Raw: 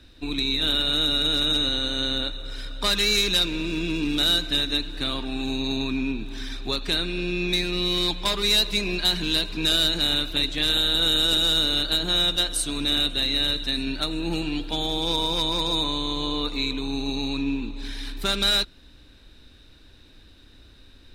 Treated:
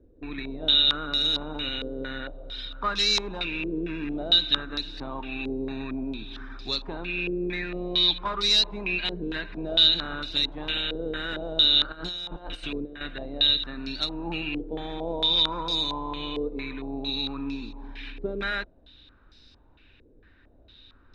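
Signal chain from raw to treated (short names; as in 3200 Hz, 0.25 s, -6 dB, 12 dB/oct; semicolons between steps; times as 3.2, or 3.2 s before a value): 11.92–13.01 negative-ratio compressor -30 dBFS, ratio -1; stepped low-pass 4.4 Hz 460–5100 Hz; gain -6.5 dB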